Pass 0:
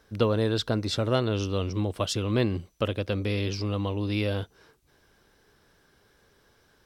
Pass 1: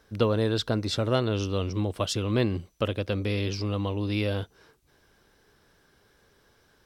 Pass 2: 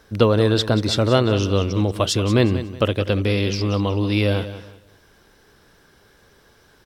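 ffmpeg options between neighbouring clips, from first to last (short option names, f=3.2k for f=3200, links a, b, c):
-af anull
-af "aecho=1:1:184|368|552:0.224|0.0627|0.0176,volume=8dB"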